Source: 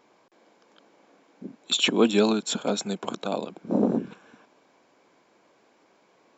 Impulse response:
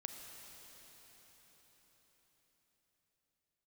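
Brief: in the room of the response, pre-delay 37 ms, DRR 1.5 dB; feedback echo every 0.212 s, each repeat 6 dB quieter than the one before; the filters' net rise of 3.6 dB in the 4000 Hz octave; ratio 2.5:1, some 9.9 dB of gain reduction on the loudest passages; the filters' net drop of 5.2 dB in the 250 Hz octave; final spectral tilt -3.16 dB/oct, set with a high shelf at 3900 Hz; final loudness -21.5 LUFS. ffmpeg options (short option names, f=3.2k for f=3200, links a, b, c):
-filter_complex "[0:a]equalizer=f=250:t=o:g=-6.5,highshelf=f=3.9k:g=-6,equalizer=f=4k:t=o:g=8,acompressor=threshold=-32dB:ratio=2.5,aecho=1:1:212|424|636|848|1060|1272:0.501|0.251|0.125|0.0626|0.0313|0.0157,asplit=2[a][b];[1:a]atrim=start_sample=2205,adelay=37[c];[b][c]afir=irnorm=-1:irlink=0,volume=1dB[d];[a][d]amix=inputs=2:normalize=0,volume=9.5dB"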